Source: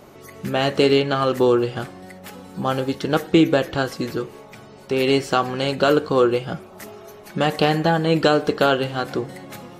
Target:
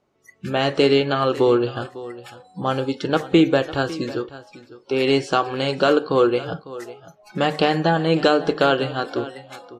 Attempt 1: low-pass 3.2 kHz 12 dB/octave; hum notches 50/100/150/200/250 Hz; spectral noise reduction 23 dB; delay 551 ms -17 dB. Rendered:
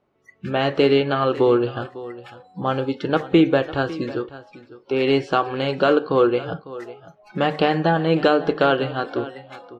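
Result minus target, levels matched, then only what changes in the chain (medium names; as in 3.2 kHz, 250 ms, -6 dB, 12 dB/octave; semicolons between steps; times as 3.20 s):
8 kHz band -11.5 dB
change: low-pass 7.3 kHz 12 dB/octave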